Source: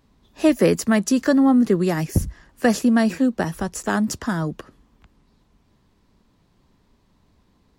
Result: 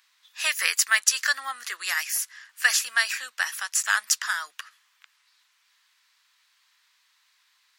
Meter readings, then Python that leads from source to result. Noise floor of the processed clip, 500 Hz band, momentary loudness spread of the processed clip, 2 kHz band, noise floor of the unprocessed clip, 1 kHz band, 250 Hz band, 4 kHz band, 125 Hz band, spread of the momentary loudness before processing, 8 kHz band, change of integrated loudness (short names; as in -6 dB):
-67 dBFS, -26.5 dB, 11 LU, +6.5 dB, -62 dBFS, -5.5 dB, under -40 dB, +8.0 dB, under -40 dB, 10 LU, +8.0 dB, -4.0 dB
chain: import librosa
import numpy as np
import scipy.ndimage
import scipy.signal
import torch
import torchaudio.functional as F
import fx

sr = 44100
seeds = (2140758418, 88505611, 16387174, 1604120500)

y = scipy.signal.sosfilt(scipy.signal.butter(4, 1500.0, 'highpass', fs=sr, output='sos'), x)
y = F.gain(torch.from_numpy(y), 8.0).numpy()